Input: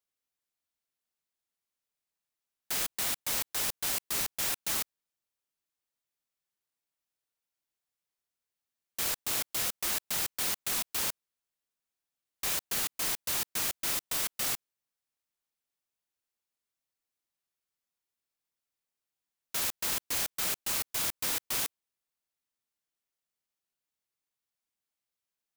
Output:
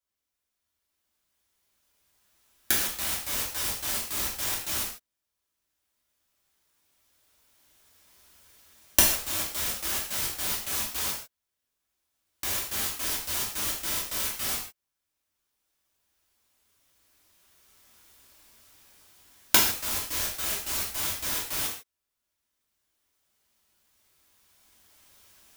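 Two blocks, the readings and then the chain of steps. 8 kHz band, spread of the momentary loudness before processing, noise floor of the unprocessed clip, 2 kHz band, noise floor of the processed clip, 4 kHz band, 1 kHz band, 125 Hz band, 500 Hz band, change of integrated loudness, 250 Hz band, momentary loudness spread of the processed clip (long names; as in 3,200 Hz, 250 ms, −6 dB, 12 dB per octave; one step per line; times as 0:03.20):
+3.5 dB, 3 LU, below −85 dBFS, +4.0 dB, −84 dBFS, +4.0 dB, +4.0 dB, +6.5 dB, +4.0 dB, +3.5 dB, +6.0 dB, 9 LU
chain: camcorder AGC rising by 8.6 dB per second
low-shelf EQ 73 Hz +7 dB
reverb whose tail is shaped and stops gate 180 ms falling, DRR −4.5 dB
level −4 dB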